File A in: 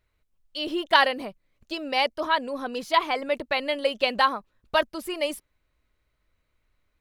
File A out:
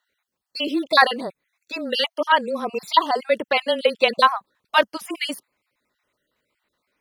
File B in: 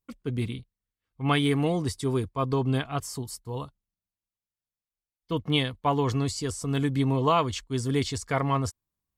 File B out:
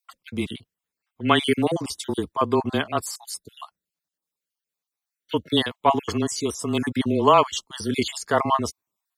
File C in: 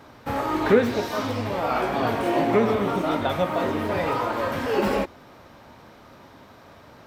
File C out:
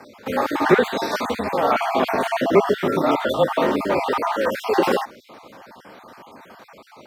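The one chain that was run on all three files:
random holes in the spectrogram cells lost 38%; high-pass 250 Hz 12 dB/octave; frequency shift -22 Hz; peak normalisation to -1.5 dBFS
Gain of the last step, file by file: +6.5 dB, +7.5 dB, +6.5 dB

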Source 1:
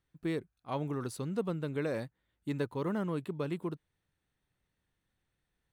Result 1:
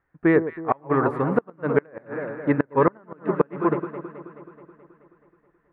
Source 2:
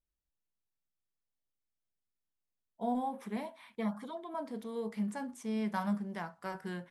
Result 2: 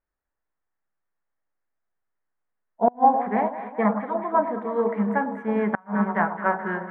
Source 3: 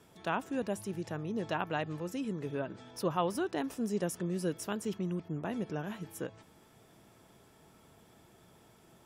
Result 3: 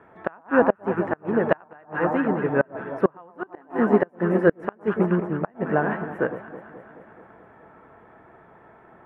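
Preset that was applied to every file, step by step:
FFT filter 150 Hz 0 dB, 760 Hz +10 dB, 1.8 kHz +11 dB, 4.8 kHz -29 dB; on a send: echo whose repeats swap between lows and highs 107 ms, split 1.1 kHz, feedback 80%, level -7 dB; on the sum: inverted gate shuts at -16 dBFS, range -27 dB; upward expansion 1.5:1, over -41 dBFS; normalise loudness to -24 LUFS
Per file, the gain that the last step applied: +11.5 dB, +11.0 dB, +11.5 dB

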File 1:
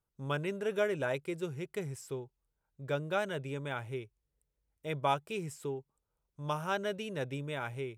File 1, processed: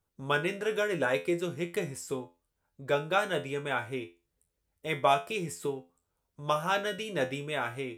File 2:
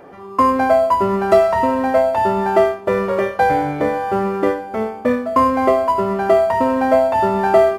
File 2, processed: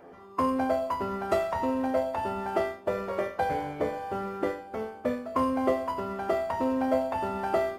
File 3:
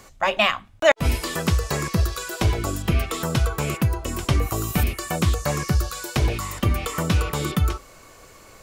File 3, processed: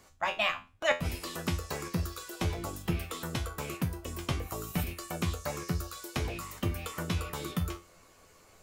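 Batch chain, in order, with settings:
harmonic-percussive split harmonic -7 dB; feedback comb 86 Hz, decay 0.28 s, harmonics all, mix 80%; peak normalisation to -12 dBFS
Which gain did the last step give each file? +15.5 dB, +1.0 dB, -1.0 dB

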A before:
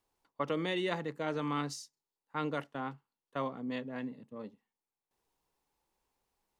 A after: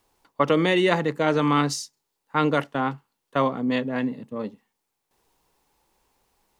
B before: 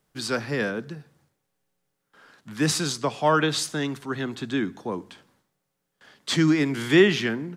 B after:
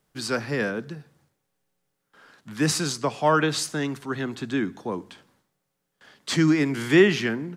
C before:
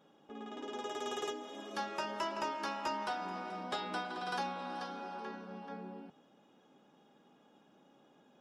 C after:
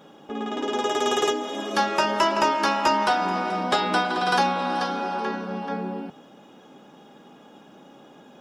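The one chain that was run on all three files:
dynamic bell 3.5 kHz, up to -5 dB, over -47 dBFS, Q 4.4; normalise loudness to -24 LUFS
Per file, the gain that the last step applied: +13.5 dB, +0.5 dB, +16.0 dB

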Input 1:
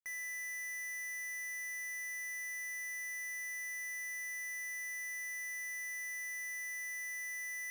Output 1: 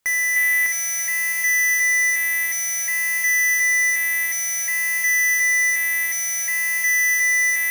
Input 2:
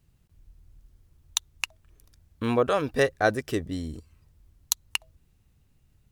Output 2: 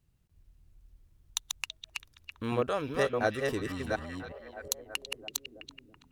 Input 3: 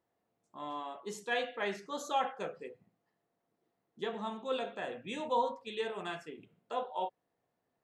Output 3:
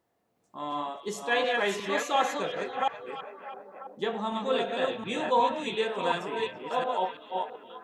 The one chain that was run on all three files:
chunks repeated in reverse 360 ms, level -2.5 dB; repeats whose band climbs or falls 330 ms, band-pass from 3.1 kHz, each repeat -0.7 oct, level -7 dB; peak normalisation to -12 dBFS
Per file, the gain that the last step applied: +21.5 dB, -7.0 dB, +6.5 dB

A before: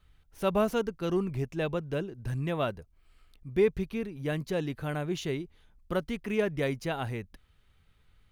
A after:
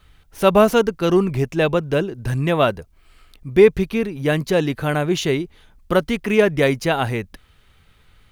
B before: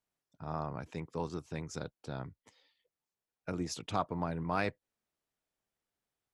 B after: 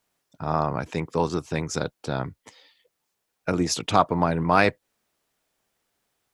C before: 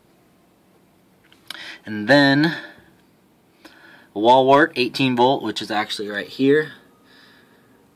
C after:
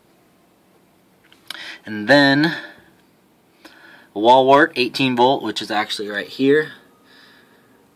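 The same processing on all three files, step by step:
bass shelf 200 Hz -5 dB; peak normalisation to -1.5 dBFS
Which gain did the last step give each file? +14.0 dB, +14.5 dB, +2.0 dB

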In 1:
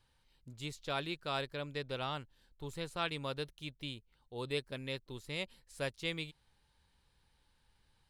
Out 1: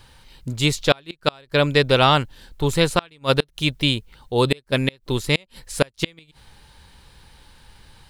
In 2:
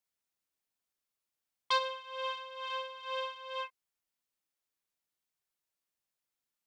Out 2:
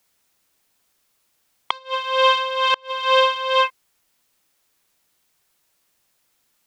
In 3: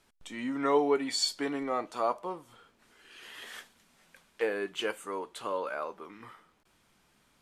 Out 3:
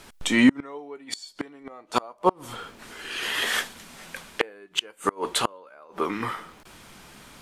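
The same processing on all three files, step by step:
inverted gate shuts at -26 dBFS, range -33 dB; peak normalisation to -1.5 dBFS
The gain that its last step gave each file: +23.5 dB, +21.0 dB, +19.5 dB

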